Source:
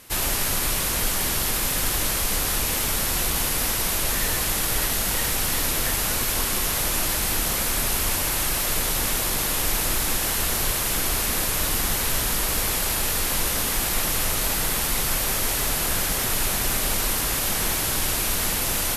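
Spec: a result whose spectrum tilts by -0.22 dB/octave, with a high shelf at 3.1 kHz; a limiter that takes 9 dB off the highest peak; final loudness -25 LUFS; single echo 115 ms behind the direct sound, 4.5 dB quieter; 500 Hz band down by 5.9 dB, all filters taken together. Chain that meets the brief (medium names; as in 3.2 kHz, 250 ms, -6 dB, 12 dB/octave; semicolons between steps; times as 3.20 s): peaking EQ 500 Hz -8 dB; treble shelf 3.1 kHz +6 dB; peak limiter -15.5 dBFS; delay 115 ms -4.5 dB; trim -4 dB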